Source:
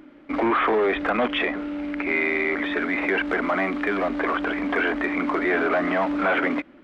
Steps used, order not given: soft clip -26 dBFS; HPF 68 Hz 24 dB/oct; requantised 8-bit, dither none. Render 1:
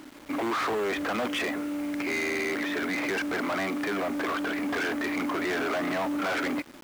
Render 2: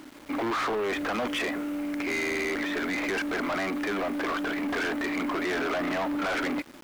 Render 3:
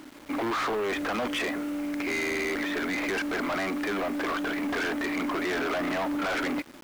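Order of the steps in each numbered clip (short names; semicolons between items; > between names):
soft clip > HPF > requantised; HPF > requantised > soft clip; HPF > soft clip > requantised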